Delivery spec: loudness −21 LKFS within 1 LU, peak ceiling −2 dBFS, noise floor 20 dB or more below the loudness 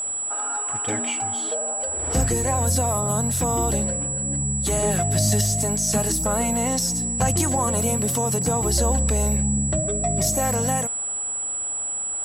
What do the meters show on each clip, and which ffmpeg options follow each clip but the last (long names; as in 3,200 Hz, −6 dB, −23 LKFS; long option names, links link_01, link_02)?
interfering tone 7,800 Hz; level of the tone −25 dBFS; integrated loudness −22.0 LKFS; sample peak −7.5 dBFS; target loudness −21.0 LKFS
→ -af "bandreject=frequency=7800:width=30"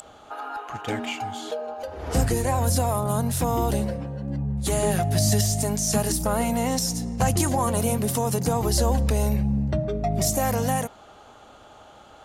interfering tone none found; integrated loudness −24.5 LKFS; sample peak −8.5 dBFS; target loudness −21.0 LKFS
→ -af "volume=3.5dB"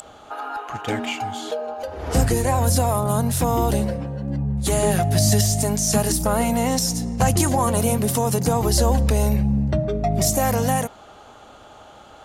integrated loudness −21.0 LKFS; sample peak −5.0 dBFS; background noise floor −46 dBFS